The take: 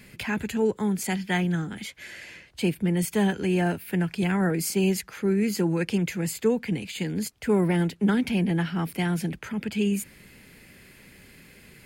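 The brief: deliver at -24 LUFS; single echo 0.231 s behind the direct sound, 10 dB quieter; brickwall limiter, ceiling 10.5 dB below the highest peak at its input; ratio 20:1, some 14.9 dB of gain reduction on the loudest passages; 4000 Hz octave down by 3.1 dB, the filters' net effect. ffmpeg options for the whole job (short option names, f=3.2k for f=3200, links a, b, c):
-af "equalizer=f=4k:t=o:g=-4.5,acompressor=threshold=-33dB:ratio=20,alimiter=level_in=9.5dB:limit=-24dB:level=0:latency=1,volume=-9.5dB,aecho=1:1:231:0.316,volume=17.5dB"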